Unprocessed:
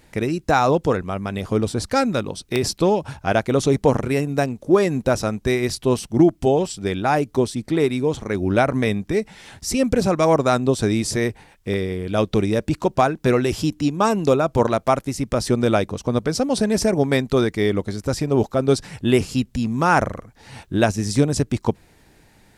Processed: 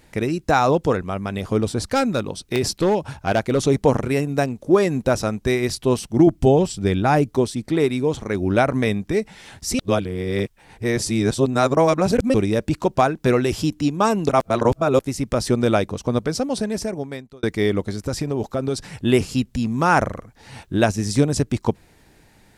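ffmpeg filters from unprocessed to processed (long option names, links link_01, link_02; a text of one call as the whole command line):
ffmpeg -i in.wav -filter_complex "[0:a]asettb=1/sr,asplit=3[link_01][link_02][link_03];[link_01]atrim=end=1.944[link_04];[link_02]atrim=start=1.94:end=3.67,asetpts=PTS-STARTPTS,afade=type=in:duration=0.004:curve=qsin,afade=type=out:start_time=1.726:duration=0.004:curve=qsin,asoftclip=type=hard:threshold=-12.5dB[link_05];[link_03]atrim=start=3.666[link_06];[link_04][link_05]acrossfade=duration=0.004:curve1=hsin:curve2=qsin[link_07];[link_07][link_06]acrossfade=duration=0.004:curve1=qsin:curve2=hsin,asettb=1/sr,asplit=3[link_08][link_09][link_10];[link_08]atrim=end=6.274[link_11];[link_09]atrim=start=6.27:end=7.29,asetpts=PTS-STARTPTS,afade=type=in:duration=0.004:curve=qsin,afade=type=out:start_time=1.016:duration=0.004:curve=qsin,lowshelf=frequency=240:gain=8.5[link_12];[link_10]atrim=start=7.286[link_13];[link_11][link_12]acrossfade=duration=0.004:curve1=hsin:curve2=qsin[link_14];[link_14][link_13]acrossfade=duration=0.004:curve1=qsin:curve2=hsin,asettb=1/sr,asplit=3[link_15][link_16][link_17];[link_15]atrim=end=17.944[link_18];[link_16]atrim=start=17.94:end=18.94,asetpts=PTS-STARTPTS,afade=type=in:duration=0.004:curve=qsin,afade=type=out:start_time=0.996:duration=0.004:curve=qsin,acompressor=threshold=-18dB:ratio=6:attack=3.2:release=140:knee=1:detection=peak[link_19];[link_17]atrim=start=18.936[link_20];[link_18][link_19]acrossfade=duration=0.004:curve1=hsin:curve2=qsin[link_21];[link_21][link_20]acrossfade=duration=0.004:curve1=qsin:curve2=hsin,asplit=6[link_22][link_23][link_24][link_25][link_26][link_27];[link_22]atrim=end=9.792[link_28];[link_23]atrim=start=9.788:end=12.342,asetpts=PTS-STARTPTS,areverse[link_29];[link_24]atrim=start=12.338:end=14.292[link_30];[link_25]atrim=start=14.288:end=14.992,asetpts=PTS-STARTPTS,areverse[link_31];[link_26]atrim=start=14.988:end=17.43,asetpts=PTS-STARTPTS,afade=type=out:start_time=1.132:duration=1.31[link_32];[link_27]atrim=start=17.43,asetpts=PTS-STARTPTS,afade=type=in:duration=0.004:curve=hsin[link_33];[link_28][link_29]acrossfade=duration=0.004:curve1=hsin:curve2=hsin[link_34];[link_34][link_30]acrossfade=duration=0.004:curve1=hsin:curve2=hsin[link_35];[link_35][link_31]acrossfade=duration=0.004:curve1=hsin:curve2=hsin[link_36];[link_32][link_33]concat=n=2:v=0:a=1[link_37];[link_36][link_37]acrossfade=duration=0.004:curve1=hsin:curve2=hsin" out.wav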